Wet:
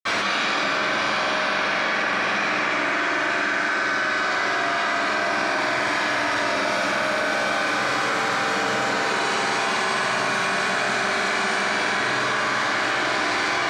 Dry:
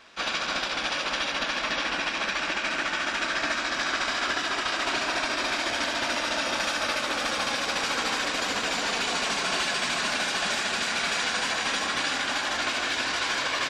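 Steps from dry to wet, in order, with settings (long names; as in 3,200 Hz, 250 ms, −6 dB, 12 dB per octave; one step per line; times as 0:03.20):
high-pass filter 86 Hz 24 dB per octave
notch filter 850 Hz, Q 21
flutter between parallel walls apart 8 metres, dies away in 0.54 s
convolution reverb RT60 4.9 s, pre-delay 52 ms
envelope flattener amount 100%
level −7.5 dB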